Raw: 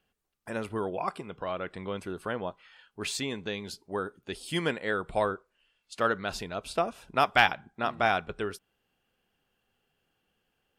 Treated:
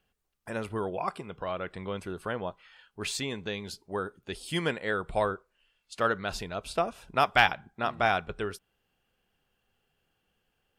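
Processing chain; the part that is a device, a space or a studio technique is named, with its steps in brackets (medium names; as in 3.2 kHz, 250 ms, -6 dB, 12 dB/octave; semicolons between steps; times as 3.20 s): low shelf boost with a cut just above (bass shelf 94 Hz +5.5 dB; peaking EQ 270 Hz -2.5 dB 0.77 oct)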